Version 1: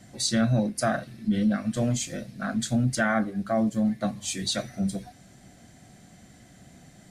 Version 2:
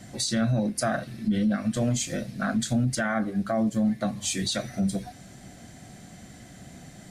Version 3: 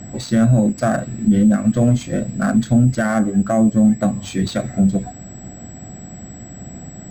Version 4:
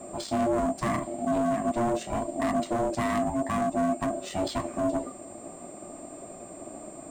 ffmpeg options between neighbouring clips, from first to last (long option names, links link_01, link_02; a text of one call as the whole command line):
ffmpeg -i in.wav -filter_complex "[0:a]asplit=2[link_01][link_02];[link_02]acompressor=threshold=-33dB:ratio=6,volume=-1dB[link_03];[link_01][link_03]amix=inputs=2:normalize=0,alimiter=limit=-17.5dB:level=0:latency=1:release=75" out.wav
ffmpeg -i in.wav -af "tiltshelf=frequency=770:gain=3.5,aeval=exprs='val(0)+0.0447*sin(2*PI*7800*n/s)':channel_layout=same,adynamicsmooth=sensitivity=2:basefreq=2000,volume=8dB" out.wav
ffmpeg -i in.wav -af "asoftclip=type=hard:threshold=-16.5dB,aeval=exprs='val(0)*sin(2*PI*470*n/s)':channel_layout=same,flanger=delay=1.6:depth=7.1:regen=-73:speed=0.47:shape=sinusoidal" out.wav